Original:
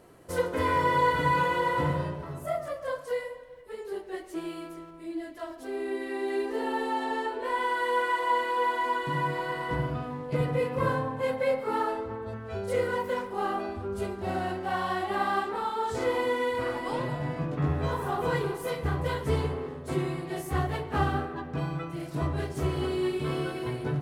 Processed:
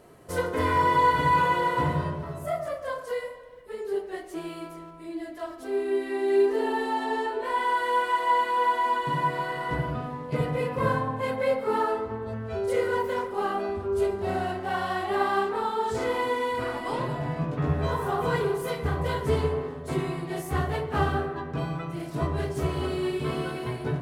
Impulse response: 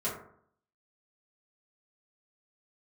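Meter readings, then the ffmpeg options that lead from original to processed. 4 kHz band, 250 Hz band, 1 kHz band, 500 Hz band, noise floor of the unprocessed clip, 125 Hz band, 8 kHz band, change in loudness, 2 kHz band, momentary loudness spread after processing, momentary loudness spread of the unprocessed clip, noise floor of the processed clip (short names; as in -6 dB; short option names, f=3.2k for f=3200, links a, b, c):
+1.5 dB, +1.5 dB, +3.0 dB, +2.5 dB, -44 dBFS, +1.5 dB, +1.5 dB, +2.5 dB, +1.0 dB, 10 LU, 10 LU, -42 dBFS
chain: -filter_complex "[0:a]asplit=2[a][b];[1:a]atrim=start_sample=2205[c];[b][c]afir=irnorm=-1:irlink=0,volume=-11dB[d];[a][d]amix=inputs=2:normalize=0"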